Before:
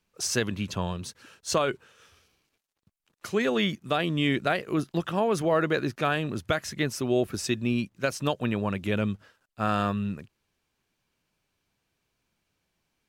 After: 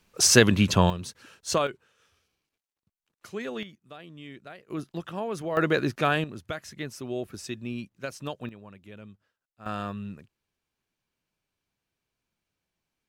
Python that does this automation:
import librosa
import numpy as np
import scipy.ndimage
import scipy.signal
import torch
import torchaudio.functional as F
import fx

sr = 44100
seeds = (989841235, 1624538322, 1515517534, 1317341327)

y = fx.gain(x, sr, db=fx.steps((0.0, 10.0), (0.9, 0.0), (1.67, -9.0), (3.63, -19.0), (4.7, -7.0), (5.57, 2.0), (6.24, -8.0), (8.49, -19.0), (9.66, -7.0)))